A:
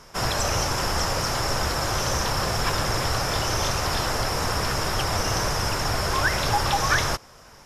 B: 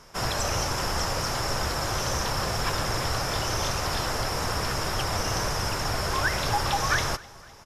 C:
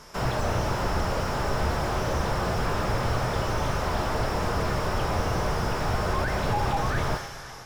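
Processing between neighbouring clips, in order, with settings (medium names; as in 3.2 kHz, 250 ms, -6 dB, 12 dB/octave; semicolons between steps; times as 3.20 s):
feedback delay 256 ms, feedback 59%, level -23 dB; trim -3 dB
flange 0.28 Hz, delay 6.6 ms, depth 7.3 ms, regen +85%; two-slope reverb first 0.45 s, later 3.3 s, from -17 dB, DRR 6.5 dB; slew-rate limiter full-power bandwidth 23 Hz; trim +7.5 dB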